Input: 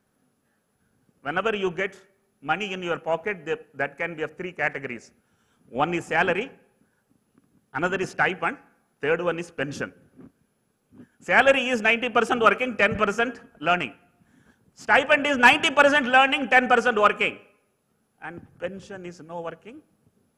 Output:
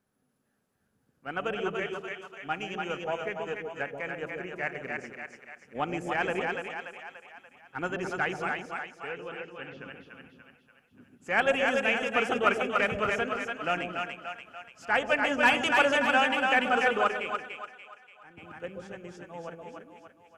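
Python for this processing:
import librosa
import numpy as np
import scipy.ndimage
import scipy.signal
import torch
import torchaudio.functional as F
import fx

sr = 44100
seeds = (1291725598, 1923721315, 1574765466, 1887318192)

y = fx.ladder_lowpass(x, sr, hz=3500.0, resonance_pct=45, at=(8.52, 9.86))
y = fx.echo_split(y, sr, split_hz=610.0, low_ms=134, high_ms=290, feedback_pct=52, wet_db=-3.0)
y = fx.upward_expand(y, sr, threshold_db=-29.0, expansion=1.5, at=(17.03, 18.37), fade=0.02)
y = y * 10.0 ** (-8.0 / 20.0)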